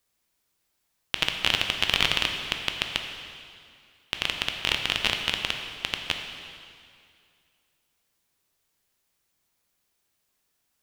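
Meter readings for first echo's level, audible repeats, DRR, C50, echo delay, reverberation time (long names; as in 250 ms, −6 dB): no echo audible, no echo audible, 3.5 dB, 5.0 dB, no echo audible, 2.3 s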